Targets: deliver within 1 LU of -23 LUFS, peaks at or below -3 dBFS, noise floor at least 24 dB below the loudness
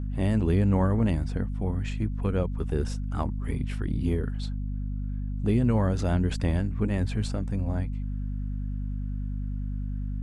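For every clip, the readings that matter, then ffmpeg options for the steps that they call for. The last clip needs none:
hum 50 Hz; harmonics up to 250 Hz; hum level -28 dBFS; loudness -28.5 LUFS; peak -12.5 dBFS; loudness target -23.0 LUFS
-> -af "bandreject=f=50:t=h:w=6,bandreject=f=100:t=h:w=6,bandreject=f=150:t=h:w=6,bandreject=f=200:t=h:w=6,bandreject=f=250:t=h:w=6"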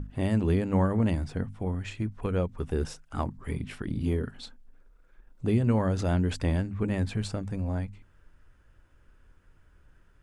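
hum none; loudness -29.5 LUFS; peak -13.0 dBFS; loudness target -23.0 LUFS
-> -af "volume=6.5dB"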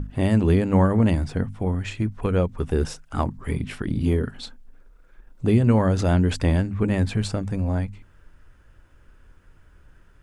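loudness -23.0 LUFS; peak -6.5 dBFS; noise floor -54 dBFS

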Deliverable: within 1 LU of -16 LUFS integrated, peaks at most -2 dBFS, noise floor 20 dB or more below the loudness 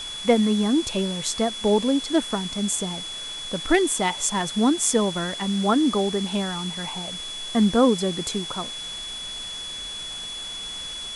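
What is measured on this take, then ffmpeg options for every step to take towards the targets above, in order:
steady tone 3400 Hz; tone level -32 dBFS; noise floor -34 dBFS; noise floor target -44 dBFS; loudness -24.0 LUFS; peak -5.0 dBFS; loudness target -16.0 LUFS
-> -af "bandreject=f=3.4k:w=30"
-af "afftdn=nr=10:nf=-34"
-af "volume=8dB,alimiter=limit=-2dB:level=0:latency=1"

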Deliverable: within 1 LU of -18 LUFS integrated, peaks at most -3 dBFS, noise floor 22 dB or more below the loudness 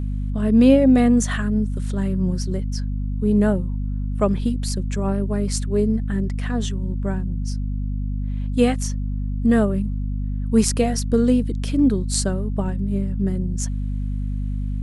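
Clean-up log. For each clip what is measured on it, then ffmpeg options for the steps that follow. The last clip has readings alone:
hum 50 Hz; harmonics up to 250 Hz; hum level -22 dBFS; loudness -22.0 LUFS; peak -3.5 dBFS; loudness target -18.0 LUFS
-> -af "bandreject=f=50:t=h:w=4,bandreject=f=100:t=h:w=4,bandreject=f=150:t=h:w=4,bandreject=f=200:t=h:w=4,bandreject=f=250:t=h:w=4"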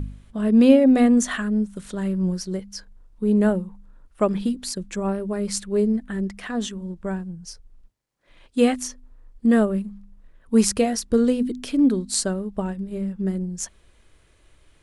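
hum none; loudness -22.5 LUFS; peak -2.5 dBFS; loudness target -18.0 LUFS
-> -af "volume=4.5dB,alimiter=limit=-3dB:level=0:latency=1"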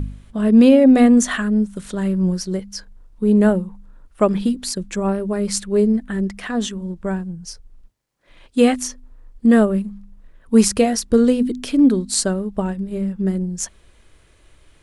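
loudness -18.0 LUFS; peak -3.0 dBFS; noise floor -53 dBFS

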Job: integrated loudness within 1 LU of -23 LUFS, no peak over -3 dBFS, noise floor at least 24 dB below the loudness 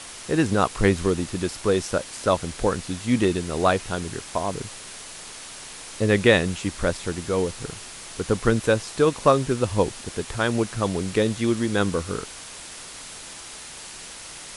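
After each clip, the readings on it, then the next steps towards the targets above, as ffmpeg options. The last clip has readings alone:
noise floor -40 dBFS; noise floor target -48 dBFS; loudness -23.5 LUFS; peak -2.5 dBFS; loudness target -23.0 LUFS
-> -af "afftdn=nr=8:nf=-40"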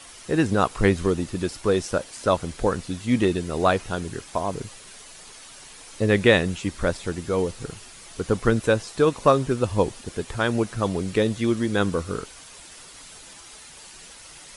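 noise floor -45 dBFS; noise floor target -48 dBFS
-> -af "afftdn=nr=6:nf=-45"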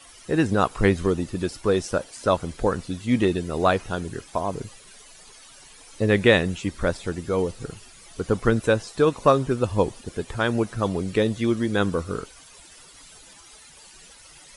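noise floor -49 dBFS; loudness -24.0 LUFS; peak -2.5 dBFS; loudness target -23.0 LUFS
-> -af "volume=1dB,alimiter=limit=-3dB:level=0:latency=1"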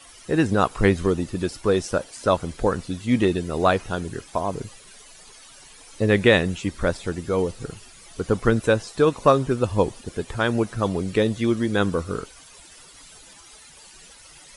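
loudness -23.0 LUFS; peak -3.0 dBFS; noise floor -48 dBFS

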